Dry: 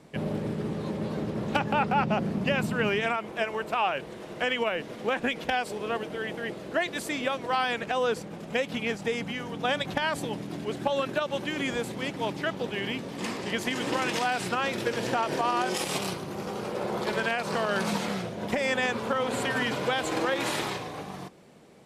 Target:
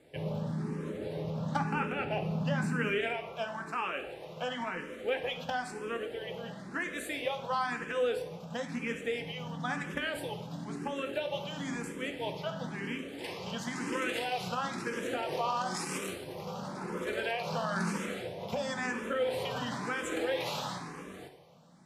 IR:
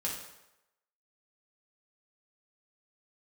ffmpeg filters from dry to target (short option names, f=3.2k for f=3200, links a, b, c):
-filter_complex "[0:a]asplit=2[a][b];[1:a]atrim=start_sample=2205,asetrate=41895,aresample=44100[c];[b][c]afir=irnorm=-1:irlink=0,volume=-3dB[d];[a][d]amix=inputs=2:normalize=0,asplit=2[e][f];[f]afreqshift=0.99[g];[e][g]amix=inputs=2:normalize=1,volume=-8dB"